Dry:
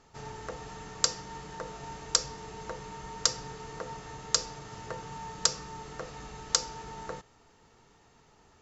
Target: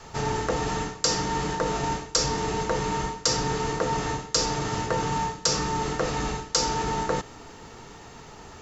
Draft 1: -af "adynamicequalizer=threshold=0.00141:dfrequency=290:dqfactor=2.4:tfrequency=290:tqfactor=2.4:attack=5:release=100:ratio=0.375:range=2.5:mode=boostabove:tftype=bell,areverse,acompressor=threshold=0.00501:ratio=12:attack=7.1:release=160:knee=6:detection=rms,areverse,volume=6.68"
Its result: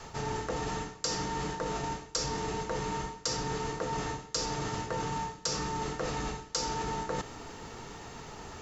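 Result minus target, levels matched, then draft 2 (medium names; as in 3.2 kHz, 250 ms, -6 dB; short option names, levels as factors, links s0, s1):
compression: peak gain reduction +9 dB
-af "adynamicequalizer=threshold=0.00141:dfrequency=290:dqfactor=2.4:tfrequency=290:tqfactor=2.4:attack=5:release=100:ratio=0.375:range=2.5:mode=boostabove:tftype=bell,areverse,acompressor=threshold=0.0158:ratio=12:attack=7.1:release=160:knee=6:detection=rms,areverse,volume=6.68"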